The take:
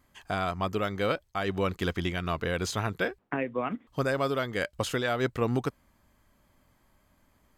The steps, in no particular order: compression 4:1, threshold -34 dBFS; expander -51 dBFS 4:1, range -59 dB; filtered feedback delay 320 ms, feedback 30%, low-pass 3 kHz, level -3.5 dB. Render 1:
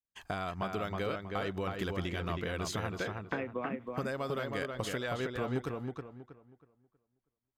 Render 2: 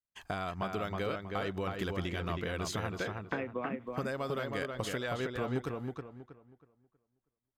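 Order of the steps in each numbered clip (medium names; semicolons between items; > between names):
compression > expander > filtered feedback delay; expander > compression > filtered feedback delay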